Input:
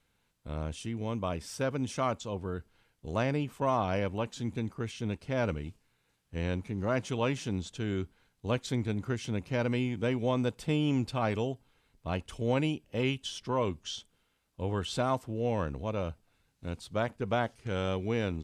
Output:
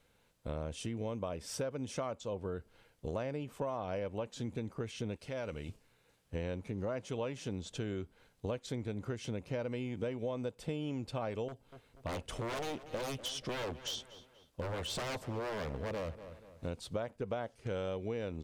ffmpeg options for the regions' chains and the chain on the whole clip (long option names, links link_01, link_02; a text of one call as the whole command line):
ffmpeg -i in.wav -filter_complex "[0:a]asettb=1/sr,asplit=3[link_01][link_02][link_03];[link_01]atrim=end=5.164[link_04];[link_02]atrim=start=5.16:end=5.69,asetpts=PTS-STARTPTS,afade=type=in:duration=0.004:curve=qsin,afade=type=out:start_time=0.526:duration=0.004:curve=qsin,tiltshelf=frequency=1500:gain=-4.5,acompressor=threshold=-43dB:ratio=2.5:attack=3.2:release=140:knee=1:detection=peak[link_05];[link_03]atrim=start=5.686[link_06];[link_04][link_05]acrossfade=duration=0.004:curve1=hsin:curve2=qsin[link_07];[link_07][link_06]acrossfade=duration=0.004:curve1=qsin:curve2=hsin,asettb=1/sr,asplit=3[link_08][link_09][link_10];[link_08]atrim=end=11.484[link_11];[link_09]atrim=start=11.48:end=16.67,asetpts=PTS-STARTPTS,afade=type=in:duration=0.004:curve=qsin,afade=type=out:start_time=5.186:duration=0.004:curve=qsin,aeval=exprs='0.0251*(abs(mod(val(0)/0.0251+3,4)-2)-1)':channel_layout=same,asplit=2[link_12][link_13];[link_13]adelay=241,lowpass=frequency=4300:poles=1,volume=-18dB,asplit=2[link_14][link_15];[link_15]adelay=241,lowpass=frequency=4300:poles=1,volume=0.42,asplit=2[link_16][link_17];[link_17]adelay=241,lowpass=frequency=4300:poles=1,volume=0.42[link_18];[link_12][link_14][link_16][link_18]amix=inputs=4:normalize=0,atrim=end_sample=228879[link_19];[link_10]atrim=start=16.666[link_20];[link_11][link_19]acrossfade=duration=0.004:curve1=hsin:curve2=qsin[link_21];[link_21][link_20]acrossfade=duration=0.004:curve1=qsin:curve2=hsin,equalizer=frequency=530:width_type=o:width=0.75:gain=7.5,acompressor=threshold=-38dB:ratio=6,volume=2.5dB" out.wav